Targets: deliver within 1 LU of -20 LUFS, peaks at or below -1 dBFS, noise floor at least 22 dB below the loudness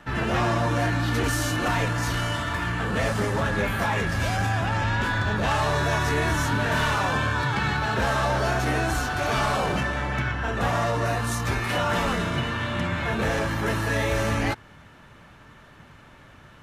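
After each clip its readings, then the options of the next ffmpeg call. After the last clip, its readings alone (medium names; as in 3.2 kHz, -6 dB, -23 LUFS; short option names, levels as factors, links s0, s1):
loudness -24.5 LUFS; peak level -12.5 dBFS; loudness target -20.0 LUFS
-> -af "volume=1.68"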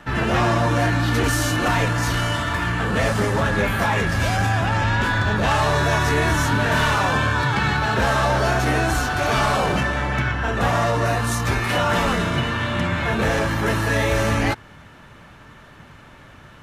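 loudness -20.0 LUFS; peak level -8.0 dBFS; noise floor -45 dBFS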